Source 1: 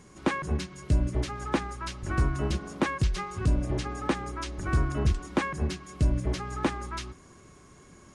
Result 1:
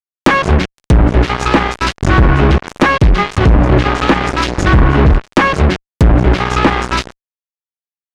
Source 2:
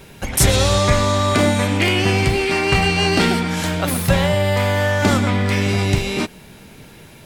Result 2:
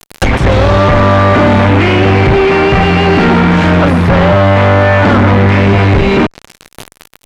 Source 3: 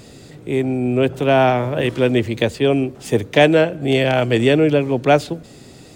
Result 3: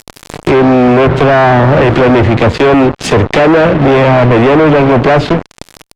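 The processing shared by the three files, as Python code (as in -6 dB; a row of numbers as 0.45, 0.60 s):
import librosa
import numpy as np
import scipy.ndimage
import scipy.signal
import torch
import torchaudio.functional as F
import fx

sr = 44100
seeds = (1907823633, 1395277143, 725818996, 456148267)

y = fx.fuzz(x, sr, gain_db=35.0, gate_db=-34.0)
y = fx.env_lowpass_down(y, sr, base_hz=1800.0, full_db=-13.0)
y = y * 10.0 ** (-2 / 20.0) / np.max(np.abs(y))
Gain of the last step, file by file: +9.0, +8.0, +8.5 dB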